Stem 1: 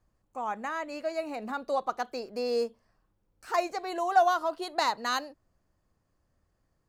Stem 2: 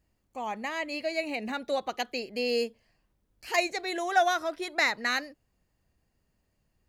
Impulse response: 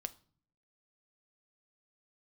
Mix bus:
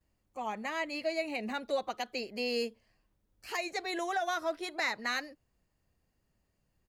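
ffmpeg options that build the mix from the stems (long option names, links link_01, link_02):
-filter_complex "[0:a]volume=-13dB[link_01];[1:a]adelay=9.1,volume=-3dB[link_02];[link_01][link_02]amix=inputs=2:normalize=0,alimiter=limit=-22.5dB:level=0:latency=1:release=165"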